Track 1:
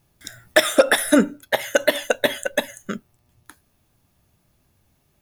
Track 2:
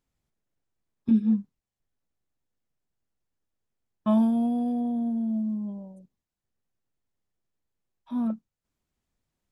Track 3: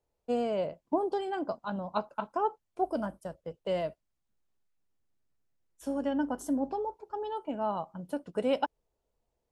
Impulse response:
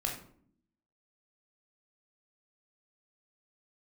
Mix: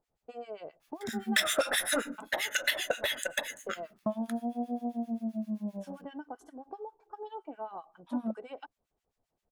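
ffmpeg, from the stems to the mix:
-filter_complex "[0:a]tiltshelf=f=970:g=-8.5,adelay=800,volume=-11dB,asplit=2[a][b];[b]volume=-6.5dB[c];[1:a]equalizer=f=640:w=1.5:g=10.5,acompressor=threshold=-28dB:ratio=6,volume=0dB[d];[2:a]aecho=1:1:2.6:0.5,acompressor=threshold=-33dB:ratio=6,volume=-10.5dB[e];[a][e]amix=inputs=2:normalize=0,asplit=2[f][g];[g]highpass=f=720:p=1,volume=19dB,asoftclip=type=tanh:threshold=-8dB[h];[f][h]amix=inputs=2:normalize=0,lowpass=f=2.1k:p=1,volume=-6dB,acompressor=threshold=-25dB:ratio=6,volume=0dB[i];[3:a]atrim=start_sample=2205[j];[c][j]afir=irnorm=-1:irlink=0[k];[d][i][k]amix=inputs=3:normalize=0,acrossover=split=1300[l][m];[l]aeval=exprs='val(0)*(1-1/2+1/2*cos(2*PI*7.6*n/s))':c=same[n];[m]aeval=exprs='val(0)*(1-1/2-1/2*cos(2*PI*7.6*n/s))':c=same[o];[n][o]amix=inputs=2:normalize=0"

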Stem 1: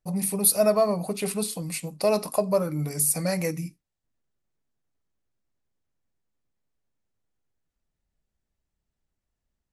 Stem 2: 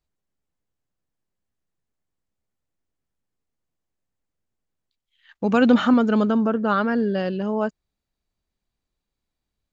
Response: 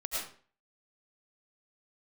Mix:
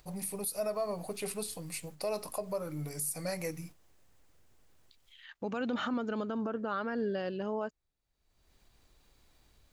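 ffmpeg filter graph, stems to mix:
-filter_complex "[0:a]volume=-7.5dB,asplit=2[a][b];[1:a]acompressor=mode=upward:threshold=-36dB:ratio=2.5,volume=1dB[c];[b]apad=whole_len=429044[d];[c][d]sidechaingate=range=-8dB:threshold=-45dB:ratio=16:detection=peak[e];[a][e]amix=inputs=2:normalize=0,equalizer=f=200:w=1.9:g=-6,alimiter=level_in=1dB:limit=-24dB:level=0:latency=1:release=126,volume=-1dB"

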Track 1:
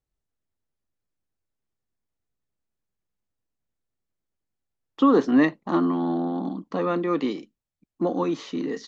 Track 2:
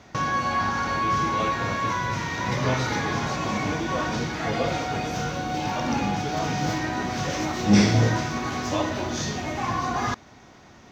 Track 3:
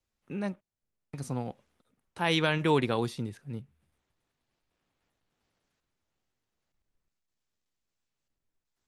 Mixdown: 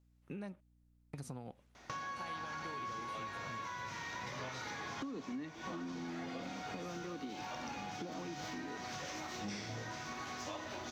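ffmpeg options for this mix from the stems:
-filter_complex "[0:a]acrossover=split=260|3000[a][b][c];[b]acompressor=threshold=-40dB:ratio=2[d];[a][d][c]amix=inputs=3:normalize=0,volume=-6dB,asplit=2[e][f];[1:a]lowshelf=f=470:g=-10,adelay=1750,volume=-5.5dB[g];[2:a]acompressor=threshold=-35dB:ratio=6,aeval=exprs='val(0)+0.000501*(sin(2*PI*60*n/s)+sin(2*PI*2*60*n/s)/2+sin(2*PI*3*60*n/s)/3+sin(2*PI*4*60*n/s)/4+sin(2*PI*5*60*n/s)/5)':c=same,volume=-2.5dB[h];[f]apad=whole_len=558607[i];[g][i]sidechaincompress=threshold=-34dB:ratio=8:attack=20:release=525[j];[e][j][h]amix=inputs=3:normalize=0,acompressor=threshold=-41dB:ratio=6"

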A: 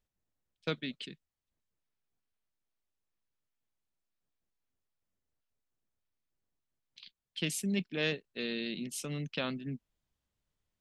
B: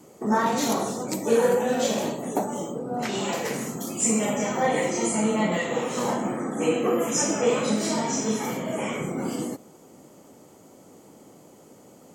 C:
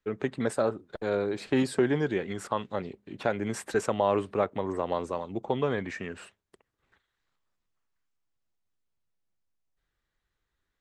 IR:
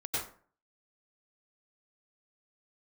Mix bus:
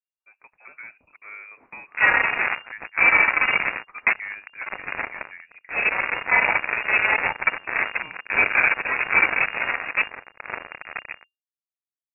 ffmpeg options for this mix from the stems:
-filter_complex "[0:a]flanger=delay=3.8:depth=9.5:regen=-79:speed=0.29:shape=sinusoidal,volume=-11dB[a];[1:a]flanger=delay=3.2:depth=8.3:regen=41:speed=1.7:shape=triangular,acrusher=bits=3:mix=0:aa=0.5,adelay=1700,volume=2dB[b];[2:a]highpass=f=540:p=1,adelay=200,volume=-14.5dB[c];[a][b][c]amix=inputs=3:normalize=0,equalizer=f=80:w=0.35:g=-15,dynaudnorm=f=200:g=9:m=10dB,lowpass=f=2.4k:t=q:w=0.5098,lowpass=f=2.4k:t=q:w=0.6013,lowpass=f=2.4k:t=q:w=0.9,lowpass=f=2.4k:t=q:w=2.563,afreqshift=-2800"

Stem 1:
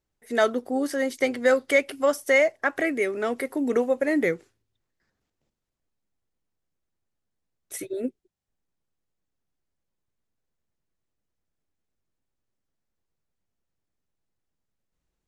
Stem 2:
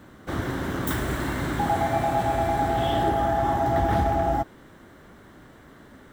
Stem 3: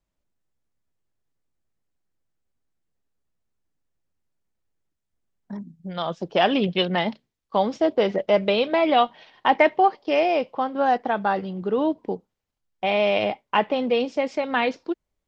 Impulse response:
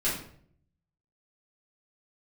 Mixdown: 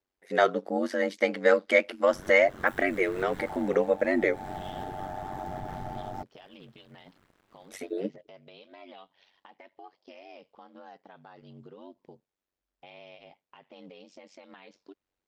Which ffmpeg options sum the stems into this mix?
-filter_complex "[0:a]acrossover=split=230 5300:gain=0.0708 1 0.141[a][b][c];[a][b][c]amix=inputs=3:normalize=0,volume=2dB,asplit=2[d][e];[1:a]alimiter=limit=-20dB:level=0:latency=1:release=223,aeval=exprs='sgn(val(0))*max(abs(val(0))-0.00398,0)':c=same,adelay=1800,volume=-5dB[f];[2:a]highshelf=f=3.1k:g=11,acompressor=threshold=-23dB:ratio=10,alimiter=limit=-22dB:level=0:latency=1:release=275,volume=-14.5dB[g];[e]apad=whole_len=349443[h];[f][h]sidechaincompress=threshold=-26dB:ratio=8:attack=12:release=261[i];[d][i][g]amix=inputs=3:normalize=0,aeval=exprs='val(0)*sin(2*PI*47*n/s)':c=same"

